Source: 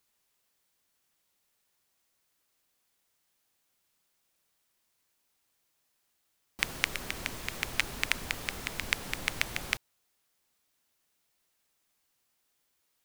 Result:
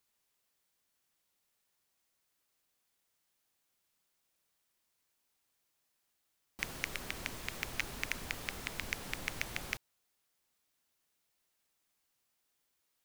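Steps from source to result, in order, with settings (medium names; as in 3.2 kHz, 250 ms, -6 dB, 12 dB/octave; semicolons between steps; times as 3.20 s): hard clipper -14 dBFS, distortion -9 dB; trim -4 dB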